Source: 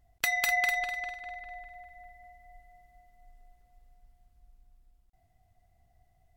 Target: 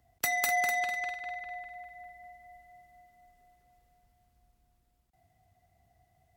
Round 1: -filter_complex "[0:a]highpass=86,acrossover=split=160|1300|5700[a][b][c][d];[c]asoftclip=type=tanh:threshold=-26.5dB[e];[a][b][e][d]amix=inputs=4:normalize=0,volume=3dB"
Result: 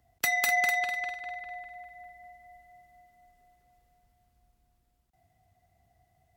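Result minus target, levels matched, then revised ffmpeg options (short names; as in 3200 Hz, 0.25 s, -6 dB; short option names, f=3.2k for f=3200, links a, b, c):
soft clip: distortion -7 dB
-filter_complex "[0:a]highpass=86,acrossover=split=160|1300|5700[a][b][c][d];[c]asoftclip=type=tanh:threshold=-35.5dB[e];[a][b][e][d]amix=inputs=4:normalize=0,volume=3dB"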